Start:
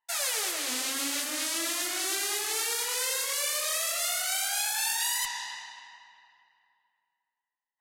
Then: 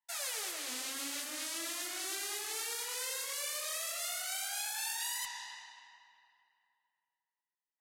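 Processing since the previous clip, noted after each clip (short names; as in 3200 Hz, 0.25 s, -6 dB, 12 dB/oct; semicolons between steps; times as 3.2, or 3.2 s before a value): low shelf 130 Hz -6 dB; gain -8.5 dB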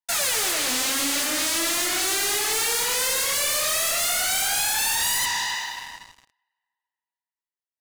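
sample leveller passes 5; gain +3.5 dB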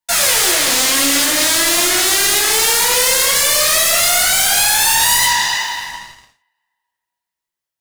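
reverb, pre-delay 3 ms, DRR -0.5 dB; gain +6.5 dB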